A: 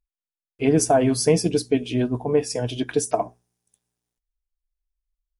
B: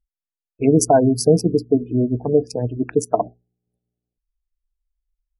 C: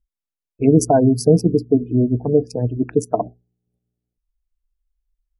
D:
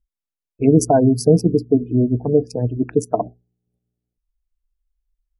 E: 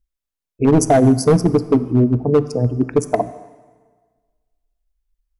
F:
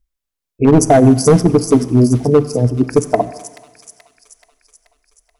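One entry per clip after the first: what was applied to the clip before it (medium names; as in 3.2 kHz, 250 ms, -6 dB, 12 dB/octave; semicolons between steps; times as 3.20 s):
local Wiener filter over 41 samples; spectral gate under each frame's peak -25 dB strong; trim +4.5 dB
bass shelf 470 Hz +8 dB; trim -4 dB
no audible change
hard clipper -9.5 dBFS, distortion -13 dB; plate-style reverb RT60 1.5 s, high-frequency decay 0.85×, DRR 14 dB; trim +2.5 dB
feedback echo behind a high-pass 430 ms, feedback 58%, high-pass 3.5 kHz, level -4 dB; trim +3.5 dB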